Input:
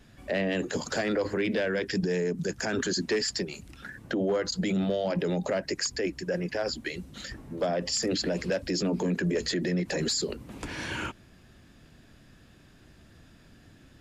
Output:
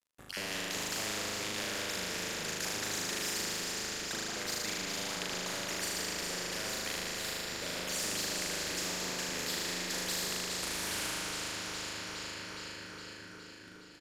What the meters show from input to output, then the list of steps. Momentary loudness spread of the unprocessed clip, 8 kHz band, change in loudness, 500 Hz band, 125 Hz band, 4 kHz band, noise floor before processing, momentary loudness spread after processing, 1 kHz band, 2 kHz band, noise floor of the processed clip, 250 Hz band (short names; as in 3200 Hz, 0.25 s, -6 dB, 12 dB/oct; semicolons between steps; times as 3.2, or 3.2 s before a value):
10 LU, +2.5 dB, -5.0 dB, -13.0 dB, -13.5 dB, +0.5 dB, -56 dBFS, 8 LU, -2.0 dB, -2.0 dB, -51 dBFS, -13.5 dB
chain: random spectral dropouts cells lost 33%; HPF 170 Hz 6 dB/oct; bell 820 Hz -6 dB; crossover distortion -51.5 dBFS; flutter echo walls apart 6.6 m, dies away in 1.3 s; downsampling 32000 Hz; echo with dull and thin repeats by turns 0.207 s, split 2100 Hz, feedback 77%, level -7 dB; spectral compressor 4:1; gain -6.5 dB